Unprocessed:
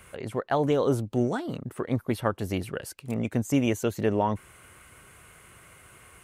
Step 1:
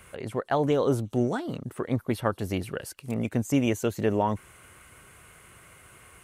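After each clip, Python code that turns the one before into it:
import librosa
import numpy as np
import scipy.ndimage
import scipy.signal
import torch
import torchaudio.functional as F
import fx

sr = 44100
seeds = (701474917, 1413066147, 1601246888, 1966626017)

y = fx.echo_wet_highpass(x, sr, ms=177, feedback_pct=71, hz=5100.0, wet_db=-22.5)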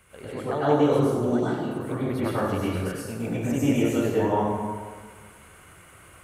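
y = fx.rev_plate(x, sr, seeds[0], rt60_s=1.6, hf_ratio=0.55, predelay_ms=85, drr_db=-9.0)
y = F.gain(torch.from_numpy(y), -7.0).numpy()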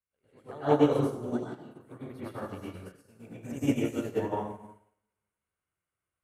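y = fx.upward_expand(x, sr, threshold_db=-43.0, expansion=2.5)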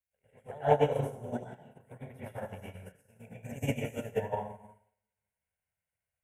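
y = fx.transient(x, sr, attack_db=5, sustain_db=-2)
y = fx.fixed_phaser(y, sr, hz=1200.0, stages=6)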